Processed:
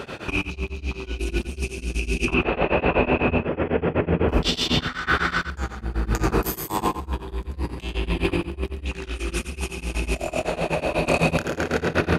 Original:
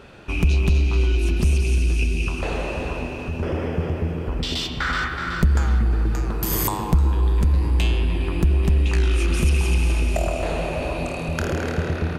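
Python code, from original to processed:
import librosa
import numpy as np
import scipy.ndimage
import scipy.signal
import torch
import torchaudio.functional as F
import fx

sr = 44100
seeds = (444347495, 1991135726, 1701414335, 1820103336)

y = fx.highpass(x, sr, hz=140.0, slope=6)
y = fx.over_compress(y, sr, threshold_db=-30.0, ratio=-0.5)
y = fx.lowpass(y, sr, hz=2900.0, slope=24, at=(2.25, 4.29))
y = fx.echo_feedback(y, sr, ms=88, feedback_pct=18, wet_db=-8)
y = y * np.abs(np.cos(np.pi * 8.0 * np.arange(len(y)) / sr))
y = F.gain(torch.from_numpy(y), 8.5).numpy()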